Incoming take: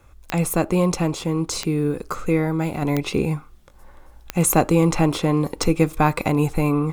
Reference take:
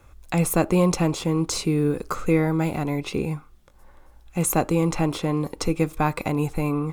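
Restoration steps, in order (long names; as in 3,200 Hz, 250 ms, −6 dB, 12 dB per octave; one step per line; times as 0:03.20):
click removal
level 0 dB, from 0:02.82 −4.5 dB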